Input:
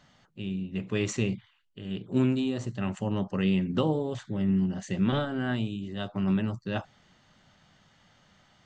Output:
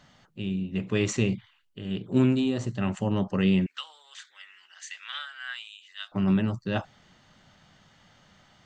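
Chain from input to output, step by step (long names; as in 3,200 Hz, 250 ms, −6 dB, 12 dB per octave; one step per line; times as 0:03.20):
0:03.66–0:06.12: high-pass filter 1,500 Hz 24 dB per octave
level +3 dB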